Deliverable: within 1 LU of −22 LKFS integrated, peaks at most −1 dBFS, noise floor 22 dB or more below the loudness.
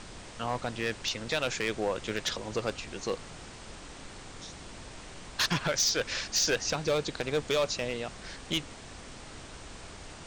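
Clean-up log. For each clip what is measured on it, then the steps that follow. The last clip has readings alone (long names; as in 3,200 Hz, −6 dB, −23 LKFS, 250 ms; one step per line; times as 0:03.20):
share of clipped samples 0.8%; peaks flattened at −21.5 dBFS; background noise floor −47 dBFS; target noise floor −53 dBFS; integrated loudness −30.5 LKFS; sample peak −21.5 dBFS; target loudness −22.0 LKFS
→ clipped peaks rebuilt −21.5 dBFS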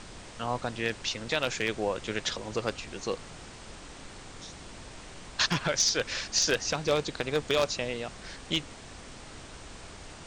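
share of clipped samples 0.0%; background noise floor −47 dBFS; target noise floor −52 dBFS
→ noise reduction from a noise print 6 dB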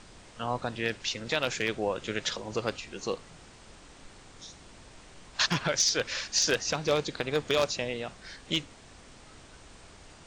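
background noise floor −53 dBFS; integrated loudness −30.0 LKFS; sample peak −12.5 dBFS; target loudness −22.0 LKFS
→ level +8 dB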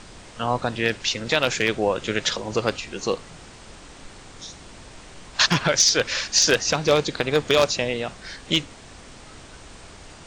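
integrated loudness −22.0 LKFS; sample peak −4.5 dBFS; background noise floor −45 dBFS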